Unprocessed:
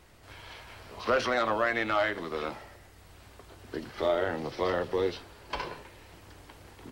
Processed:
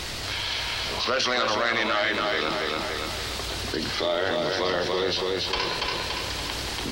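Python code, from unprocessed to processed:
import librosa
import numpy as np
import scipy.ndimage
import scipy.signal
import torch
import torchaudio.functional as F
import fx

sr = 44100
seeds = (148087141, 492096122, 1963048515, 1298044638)

p1 = fx.peak_eq(x, sr, hz=4400.0, db=13.5, octaves=1.7)
p2 = p1 + fx.echo_feedback(p1, sr, ms=285, feedback_pct=34, wet_db=-5, dry=0)
p3 = fx.env_flatten(p2, sr, amount_pct=70)
y = p3 * 10.0 ** (-2.5 / 20.0)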